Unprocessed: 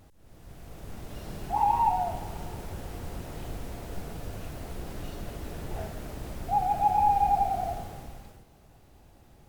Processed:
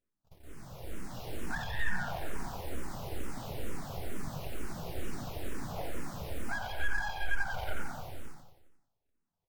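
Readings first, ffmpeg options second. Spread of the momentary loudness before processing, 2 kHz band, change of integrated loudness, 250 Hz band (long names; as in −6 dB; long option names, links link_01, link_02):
19 LU, +11.5 dB, −9.5 dB, −2.5 dB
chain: -filter_complex "[0:a]agate=range=-31dB:threshold=-49dB:ratio=16:detection=peak,acompressor=threshold=-29dB:ratio=6,aeval=exprs='abs(val(0))':channel_layout=same,asplit=2[link_01][link_02];[link_02]aecho=0:1:89|178|267|356|445|534|623:0.473|0.265|0.148|0.0831|0.0465|0.0261|0.0146[link_03];[link_01][link_03]amix=inputs=2:normalize=0,asplit=2[link_04][link_05];[link_05]afreqshift=-2.2[link_06];[link_04][link_06]amix=inputs=2:normalize=1,volume=2.5dB"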